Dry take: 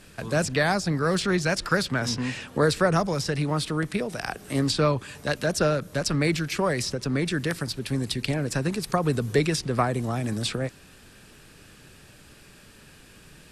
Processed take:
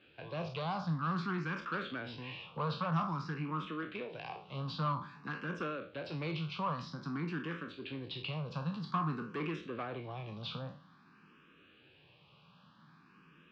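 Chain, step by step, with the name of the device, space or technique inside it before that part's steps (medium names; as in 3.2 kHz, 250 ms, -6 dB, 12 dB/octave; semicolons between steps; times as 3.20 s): spectral sustain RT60 0.39 s; low-pass 6.6 kHz 12 dB/octave; bass shelf 130 Hz -8.5 dB; barber-pole phaser into a guitar amplifier (barber-pole phaser +0.51 Hz; saturation -23 dBFS, distortion -13 dB; cabinet simulation 110–3600 Hz, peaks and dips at 160 Hz +8 dB, 420 Hz -4 dB, 640 Hz -6 dB, 1.1 kHz +9 dB, 1.9 kHz -9 dB, 2.9 kHz +3 dB); trim -8 dB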